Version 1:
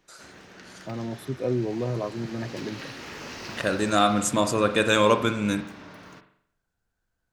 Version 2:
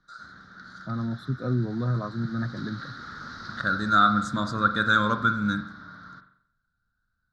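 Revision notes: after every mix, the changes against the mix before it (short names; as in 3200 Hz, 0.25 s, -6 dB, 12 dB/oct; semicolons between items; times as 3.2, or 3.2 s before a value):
first voice +5.0 dB; master: add EQ curve 220 Hz 0 dB, 390 Hz -14 dB, 950 Hz -10 dB, 1400 Hz +11 dB, 2700 Hz -29 dB, 3800 Hz +1 dB, 7500 Hz -18 dB, 13000 Hz -29 dB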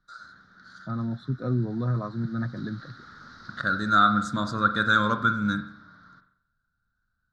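first voice: add air absorption 84 m; background -7.5 dB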